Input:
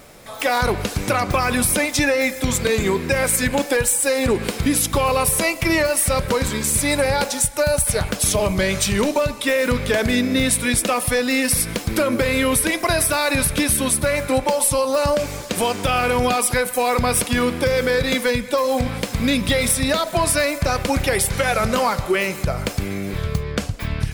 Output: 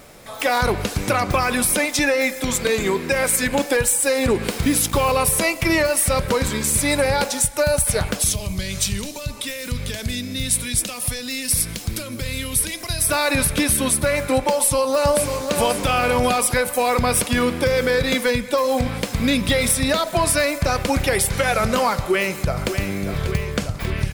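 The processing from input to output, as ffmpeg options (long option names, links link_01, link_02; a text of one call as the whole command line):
ffmpeg -i in.wav -filter_complex "[0:a]asettb=1/sr,asplit=3[link_01][link_02][link_03];[link_01]atrim=end=1.444[link_04];[link_02]atrim=start=1.44:end=3.52,asetpts=PTS-STARTPTS,afade=type=in:duration=0.004:curve=qsin,afade=type=out:start_time=2.076:duration=0.004:curve=qsin,equalizer=frequency=89:width_type=o:width=1.5:gain=-9.5[link_05];[link_03]atrim=start=3.516[link_06];[link_04][link_05]acrossfade=duration=0.004:curve1=hsin:curve2=qsin[link_07];[link_07][link_06]acrossfade=duration=0.004:curve1=qsin:curve2=hsin,asettb=1/sr,asplit=3[link_08][link_09][link_10];[link_08]atrim=end=4.514[link_11];[link_09]atrim=start=4.51:end=5.12,asetpts=PTS-STARTPTS,afade=type=in:duration=0.004:curve=qsin,afade=type=out:start_time=0.606:duration=0.004:curve=qsin,acrusher=bits=4:mix=0:aa=0.5[link_12];[link_10]atrim=start=5.116[link_13];[link_11][link_12]acrossfade=duration=0.004:curve1=hsin:curve2=qsin[link_14];[link_14][link_13]acrossfade=duration=0.004:curve1=qsin:curve2=hsin,asettb=1/sr,asplit=3[link_15][link_16][link_17];[link_15]atrim=end=8.224[link_18];[link_16]atrim=start=8.22:end=13.09,asetpts=PTS-STARTPTS,afade=type=in:duration=0.004:curve=qsin,afade=type=out:start_time=4.866:duration=0.004:curve=qsin,acrossover=split=160|3000[link_19][link_20][link_21];[link_20]acompressor=threshold=-36dB:ratio=4:attack=3.2:release=140:knee=2.83:detection=peak[link_22];[link_19][link_22][link_21]amix=inputs=3:normalize=0[link_23];[link_17]atrim=start=13.086[link_24];[link_18][link_23]acrossfade=duration=0.004:curve1=hsin:curve2=qsin[link_25];[link_25][link_24]acrossfade=duration=0.004:curve1=qsin:curve2=hsin,asplit=2[link_26][link_27];[link_27]afade=type=in:start_time=14.5:duration=0.01,afade=type=out:start_time=15.41:duration=0.01,aecho=0:1:540|1080|1620|2160|2700:0.473151|0.212918|0.0958131|0.0431159|0.0194022[link_28];[link_26][link_28]amix=inputs=2:normalize=0,asplit=2[link_29][link_30];[link_30]afade=type=in:start_time=21.97:duration=0.01,afade=type=out:start_time=22.72:duration=0.01,aecho=0:1:590|1180|1770|2360|2950|3540|4130|4720|5310|5900|6490|7080:0.354813|0.26611|0.199583|0.149687|0.112265|0.0841989|0.0631492|0.0473619|0.0355214|0.0266411|0.0199808|0.0149856[link_31];[link_29][link_31]amix=inputs=2:normalize=0" out.wav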